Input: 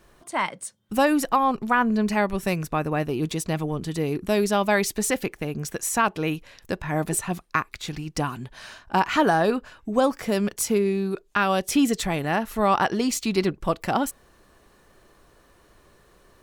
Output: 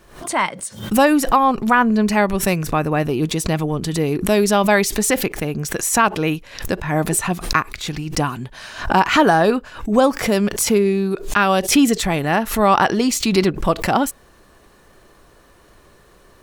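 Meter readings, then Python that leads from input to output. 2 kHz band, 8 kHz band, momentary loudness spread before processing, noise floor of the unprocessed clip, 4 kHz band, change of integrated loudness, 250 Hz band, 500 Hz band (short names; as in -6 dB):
+6.5 dB, +7.5 dB, 10 LU, -58 dBFS, +8.0 dB, +6.5 dB, +6.5 dB, +6.0 dB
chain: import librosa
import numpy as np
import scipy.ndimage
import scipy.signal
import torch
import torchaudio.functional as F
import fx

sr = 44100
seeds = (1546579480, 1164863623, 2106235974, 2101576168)

y = fx.pre_swell(x, sr, db_per_s=110.0)
y = y * librosa.db_to_amplitude(6.0)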